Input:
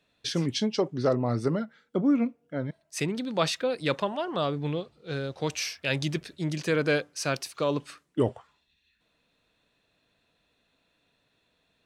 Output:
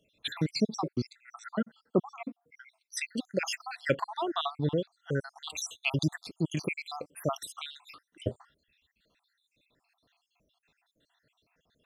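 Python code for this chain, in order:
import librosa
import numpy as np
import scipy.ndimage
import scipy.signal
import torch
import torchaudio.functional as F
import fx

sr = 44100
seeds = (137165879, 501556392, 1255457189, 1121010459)

y = fx.spec_dropout(x, sr, seeds[0], share_pct=72)
y = y * librosa.db_to_amplitude(3.0)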